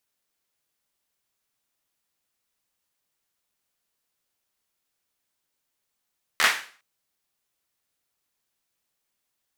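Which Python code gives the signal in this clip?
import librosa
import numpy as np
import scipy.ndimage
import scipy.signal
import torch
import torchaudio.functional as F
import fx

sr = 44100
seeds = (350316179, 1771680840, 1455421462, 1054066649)

y = fx.drum_clap(sr, seeds[0], length_s=0.41, bursts=4, spacing_ms=13, hz=1700.0, decay_s=0.42)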